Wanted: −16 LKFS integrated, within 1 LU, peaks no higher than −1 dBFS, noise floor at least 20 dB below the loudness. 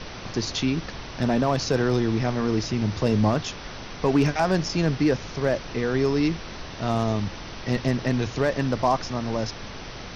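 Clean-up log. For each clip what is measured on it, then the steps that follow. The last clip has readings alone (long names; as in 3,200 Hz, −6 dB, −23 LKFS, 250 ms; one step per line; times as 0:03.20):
share of clipped samples 0.2%; peaks flattened at −12.5 dBFS; background noise floor −38 dBFS; target noise floor −45 dBFS; integrated loudness −25.0 LKFS; sample peak −12.5 dBFS; target loudness −16.0 LKFS
→ clipped peaks rebuilt −12.5 dBFS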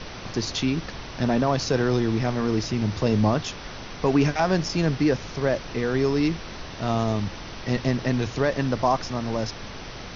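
share of clipped samples 0.0%; background noise floor −38 dBFS; target noise floor −45 dBFS
→ noise reduction from a noise print 7 dB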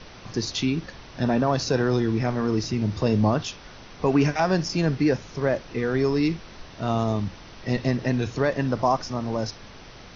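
background noise floor −45 dBFS; integrated loudness −25.0 LKFS; sample peak −9.0 dBFS; target loudness −16.0 LKFS
→ level +9 dB
brickwall limiter −1 dBFS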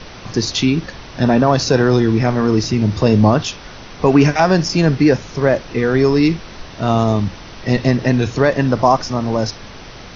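integrated loudness −16.0 LKFS; sample peak −1.0 dBFS; background noise floor −36 dBFS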